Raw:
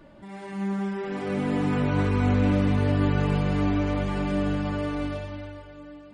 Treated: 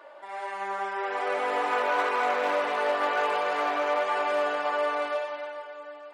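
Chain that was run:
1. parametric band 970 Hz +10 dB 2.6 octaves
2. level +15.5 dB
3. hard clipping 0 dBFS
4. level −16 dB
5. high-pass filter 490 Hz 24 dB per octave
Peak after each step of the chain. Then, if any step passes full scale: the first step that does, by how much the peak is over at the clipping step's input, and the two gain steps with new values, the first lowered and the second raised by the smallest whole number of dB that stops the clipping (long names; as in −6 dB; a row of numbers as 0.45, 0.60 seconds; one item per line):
−7.5, +8.0, 0.0, −16.0, −14.0 dBFS
step 2, 8.0 dB
step 2 +7.5 dB, step 4 −8 dB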